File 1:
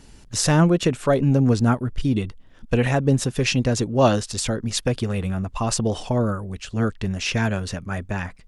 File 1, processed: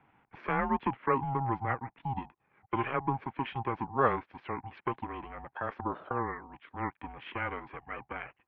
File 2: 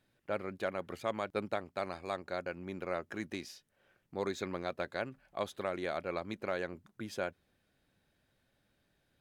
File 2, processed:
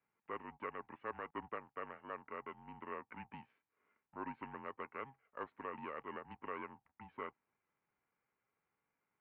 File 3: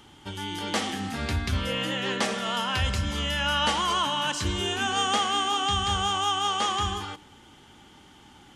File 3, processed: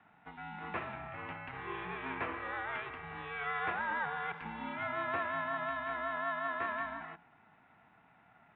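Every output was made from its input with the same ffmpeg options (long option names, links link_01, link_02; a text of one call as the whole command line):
ffmpeg -i in.wav -af "highpass=frequency=270:width_type=q:width=0.5412,highpass=frequency=270:width_type=q:width=1.307,lowpass=frequency=2100:width_type=q:width=0.5176,lowpass=frequency=2100:width_type=q:width=0.7071,lowpass=frequency=2100:width_type=q:width=1.932,afreqshift=210,aeval=exprs='val(0)*sin(2*PI*340*n/s)':channel_layout=same,volume=-5.5dB" out.wav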